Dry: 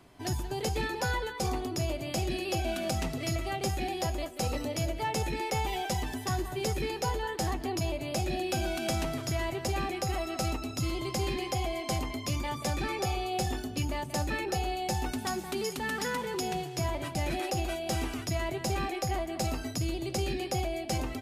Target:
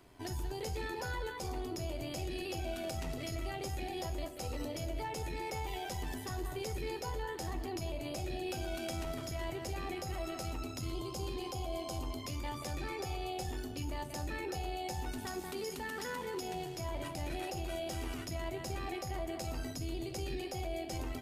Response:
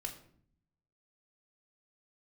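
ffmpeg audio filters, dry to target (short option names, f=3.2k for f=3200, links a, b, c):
-filter_complex "[0:a]asettb=1/sr,asplit=3[a][b][c];[a]atrim=end=10.924[d];[b]atrim=start=10.92:end=12.2,asetpts=PTS-STARTPTS,afade=t=in:d=0.004:c=qsin,afade=t=out:st=1.276:d=0.004:c=qsin,equalizer=f=2k:w=3.7:g=-12.5[e];[c]atrim=start=12.196[f];[d][e]acrossfade=d=0.004:c1=hsin:c2=qsin[g];[g][f]acrossfade=d=0.004:c1=qsin:c2=hsin,alimiter=level_in=5dB:limit=-24dB:level=0:latency=1:release=43,volume=-5dB,tremolo=f=87:d=0.4,asplit=2[h][i];[1:a]atrim=start_sample=2205,highshelf=f=12k:g=11[j];[i][j]afir=irnorm=-1:irlink=0,volume=-2.5dB[k];[h][k]amix=inputs=2:normalize=0,volume=-5dB"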